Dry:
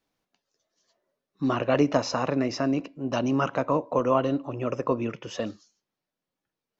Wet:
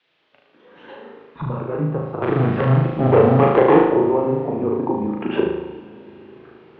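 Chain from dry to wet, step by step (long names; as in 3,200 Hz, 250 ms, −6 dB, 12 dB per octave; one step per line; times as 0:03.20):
adaptive Wiener filter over 9 samples
camcorder AGC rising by 39 dB per second
treble cut that deepens with the level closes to 740 Hz, closed at −22 dBFS
background noise violet −52 dBFS
0:02.22–0:03.83: leveller curve on the samples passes 3
0:01.29–0:02.83: gain on a spectral selection 330–1,200 Hz −6 dB
flutter between parallel walls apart 6.4 metres, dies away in 0.84 s
on a send at −15 dB: convolution reverb RT60 5.1 s, pre-delay 4 ms
on the sum: single-sideband voice off tune −140 Hz 370–3,400 Hz
level +5 dB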